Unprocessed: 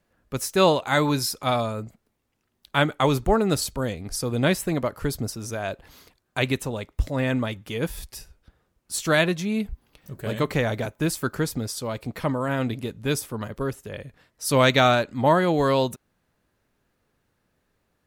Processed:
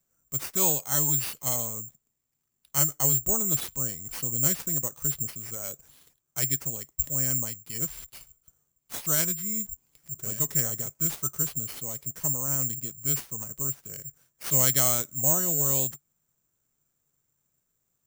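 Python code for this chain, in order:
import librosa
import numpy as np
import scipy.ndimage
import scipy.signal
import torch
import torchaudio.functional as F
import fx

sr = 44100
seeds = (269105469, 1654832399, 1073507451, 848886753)

y = fx.peak_eq(x, sr, hz=140.0, db=9.5, octaves=0.45)
y = fx.formant_shift(y, sr, semitones=-2)
y = (np.kron(y[::6], np.eye(6)[0]) * 6)[:len(y)]
y = y * librosa.db_to_amplitude(-14.0)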